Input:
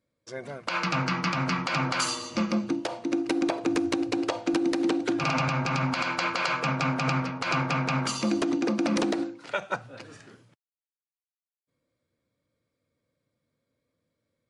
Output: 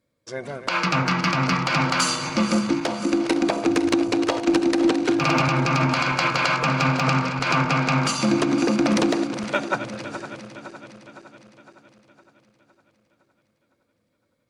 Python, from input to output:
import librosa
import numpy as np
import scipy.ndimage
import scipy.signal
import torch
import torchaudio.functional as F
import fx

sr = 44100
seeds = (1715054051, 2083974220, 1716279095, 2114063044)

y = fx.reverse_delay_fb(x, sr, ms=255, feedback_pct=73, wet_db=-11.0)
y = fx.cheby_harmonics(y, sr, harmonics=(6, 8), levels_db=(-27, -29), full_scale_db=-12.0)
y = F.gain(torch.from_numpy(y), 5.5).numpy()